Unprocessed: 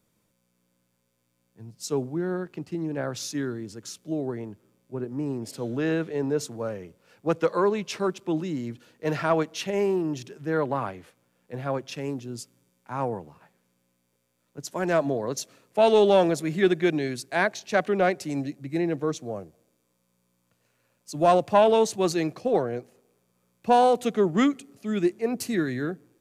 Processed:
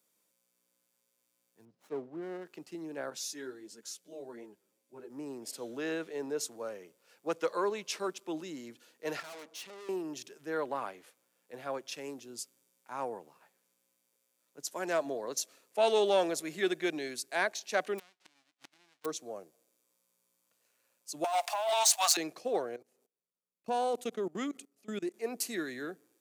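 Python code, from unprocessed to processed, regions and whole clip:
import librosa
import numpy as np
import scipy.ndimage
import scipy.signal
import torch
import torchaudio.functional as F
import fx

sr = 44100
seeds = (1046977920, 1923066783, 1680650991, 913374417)

y = fx.chain(x, sr, fx.spacing_loss(db_at_10k=32),
    fx.running_max(window=9), at=(1.65, 2.45))
y = fx.chain(y, sr, fx.notch(hz=1200.0, q=7.6),
    fx.ensemble(), at=(3.1, 5.1))
y = fx.chain(y, sr, fx.high_shelf(hz=9700.0, db=-11.0),
    fx.tube_stage(drive_db=38.0, bias=0.45), at=(9.2, 9.89))
y = fx.envelope_flatten(y, sr, power=0.1, at=(17.98, 19.04), fade=0.02)
y = fx.lowpass(y, sr, hz=3400.0, slope=12, at=(17.98, 19.04), fade=0.02)
y = fx.gate_flip(y, sr, shuts_db=-28.0, range_db=-31, at=(17.98, 19.04), fade=0.02)
y = fx.chain(y, sr, fx.steep_highpass(hz=630.0, slope=96),
    fx.over_compress(threshold_db=-28.0, ratio=-1.0),
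    fx.leveller(passes=2), at=(21.24, 22.17))
y = fx.chain(y, sr, fx.gate_hold(open_db=-50.0, close_db=-56.0, hold_ms=71.0, range_db=-21, attack_ms=1.4, release_ms=100.0),
    fx.low_shelf(hz=400.0, db=7.5),
    fx.level_steps(step_db=22), at=(22.76, 25.14))
y = scipy.signal.sosfilt(scipy.signal.butter(2, 340.0, 'highpass', fs=sr, output='sos'), y)
y = fx.high_shelf(y, sr, hz=4100.0, db=9.5)
y = F.gain(torch.from_numpy(y), -7.5).numpy()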